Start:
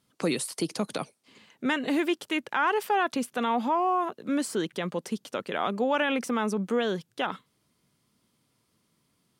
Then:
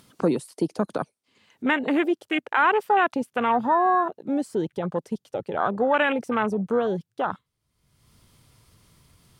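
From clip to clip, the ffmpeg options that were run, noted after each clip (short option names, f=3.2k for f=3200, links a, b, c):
-af "asubboost=boost=9.5:cutoff=74,afwtdn=0.0251,acompressor=mode=upward:threshold=-44dB:ratio=2.5,volume=6dB"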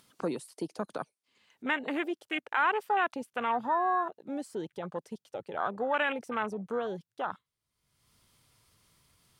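-af "lowshelf=f=500:g=-8,volume=-5.5dB"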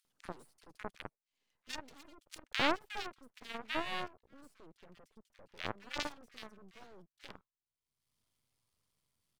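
-filter_complex "[0:a]aeval=exprs='0.2*(cos(1*acos(clip(val(0)/0.2,-1,1)))-cos(1*PI/2))+0.0708*(cos(3*acos(clip(val(0)/0.2,-1,1)))-cos(3*PI/2))':c=same,aeval=exprs='max(val(0),0)':c=same,acrossover=split=1600[a][b];[a]adelay=50[c];[c][b]amix=inputs=2:normalize=0,volume=12dB"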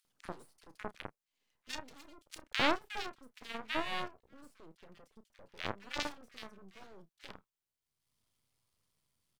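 -filter_complex "[0:a]asplit=2[a][b];[b]adelay=31,volume=-13.5dB[c];[a][c]amix=inputs=2:normalize=0,volume=1dB"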